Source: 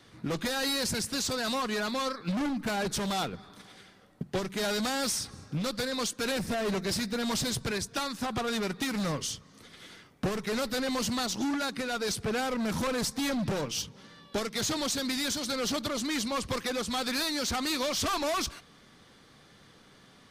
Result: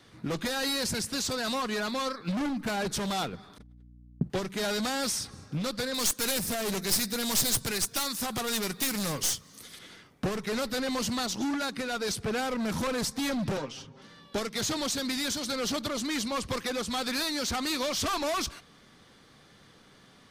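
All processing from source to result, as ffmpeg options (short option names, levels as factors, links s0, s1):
-filter_complex "[0:a]asettb=1/sr,asplit=3[s0][s1][s2];[s0]atrim=end=3.584[s3];[s1]atrim=start=3.58:end=4.3,asetpts=PTS-STARTPTS,afade=t=in:d=0.004:c=qsin,afade=t=out:st=0.716:d=0.004:c=qsin,agate=range=0.0112:threshold=0.00355:ratio=16:release=100:detection=peak,tiltshelf=f=740:g=9.5,aeval=exprs='val(0)+0.00282*(sin(2*PI*60*n/s)+sin(2*PI*2*60*n/s)/2+sin(2*PI*3*60*n/s)/3+sin(2*PI*4*60*n/s)/4+sin(2*PI*5*60*n/s)/5)':c=same[s4];[s2]atrim=start=4.296[s5];[s3][s4]acrossfade=d=0.004:c1=hsin:c2=qsin[s6];[s6][s5]acrossfade=d=0.004:c1=qsin:c2=hsin,asettb=1/sr,asplit=3[s7][s8][s9];[s7]atrim=end=5.944[s10];[s8]atrim=start=5.94:end=9.79,asetpts=PTS-STARTPTS,afade=t=in:d=0.004:c=qsin,afade=t=out:st=3.846:d=0.004:c=qsin,aemphasis=mode=production:type=75fm,aeval=exprs='clip(val(0),-1,0.0299)':c=same[s11];[s9]atrim=start=9.786[s12];[s10][s11]acrossfade=d=0.004:c1=hsin:c2=qsin[s13];[s13][s12]acrossfade=d=0.004:c1=qsin:c2=hsin,asettb=1/sr,asplit=3[s14][s15][s16];[s14]atrim=end=13.574[s17];[s15]atrim=start=13.57:end=14.02,asetpts=PTS-STARTPTS,afade=t=in:d=0.004:c=qsin,afade=t=out:st=0.446:d=0.004:c=qsin,aecho=1:1:7.5:0.68,atrim=end_sample=19845,acrossover=split=210|1900[s18][s19][s20];[s18]acompressor=threshold=0.00316:ratio=4[s21];[s19]acompressor=threshold=0.0251:ratio=4[s22];[s20]acompressor=threshold=0.00501:ratio=4[s23];[s21][s22][s23]amix=inputs=3:normalize=0,lowpass=7400[s24];[s16]atrim=start=14.016[s25];[s17][s24]acrossfade=d=0.004:c1=hsin:c2=qsin[s26];[s26][s25]acrossfade=d=0.004:c1=qsin:c2=hsin"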